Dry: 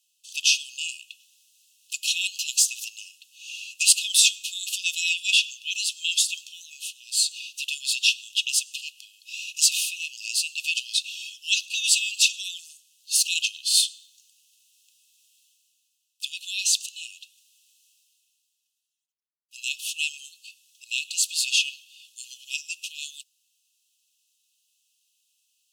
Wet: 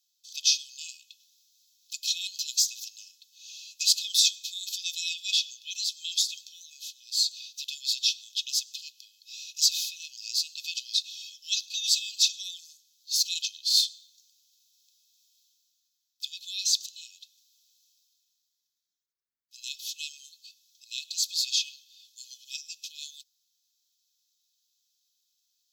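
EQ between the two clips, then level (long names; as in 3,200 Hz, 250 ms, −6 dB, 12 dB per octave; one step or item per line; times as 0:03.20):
phaser with its sweep stopped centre 2,800 Hz, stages 6
0.0 dB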